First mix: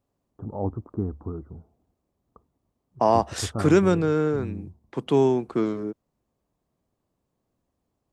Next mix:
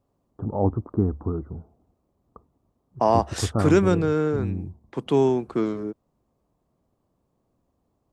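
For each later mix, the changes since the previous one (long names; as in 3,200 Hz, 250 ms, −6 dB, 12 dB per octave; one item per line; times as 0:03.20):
first voice +6.0 dB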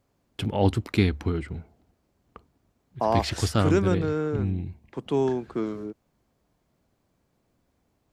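first voice: remove elliptic low-pass filter 1,200 Hz, stop band 50 dB
second voice −4.5 dB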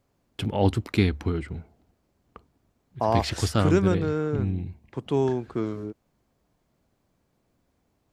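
second voice: remove high-pass filter 140 Hz 24 dB per octave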